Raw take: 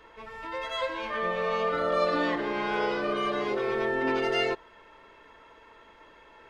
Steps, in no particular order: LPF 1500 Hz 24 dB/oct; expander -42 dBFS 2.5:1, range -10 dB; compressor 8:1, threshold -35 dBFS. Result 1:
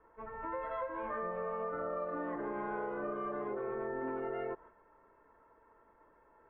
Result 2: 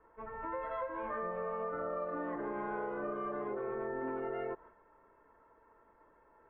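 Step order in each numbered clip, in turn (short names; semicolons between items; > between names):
LPF > expander > compressor; expander > LPF > compressor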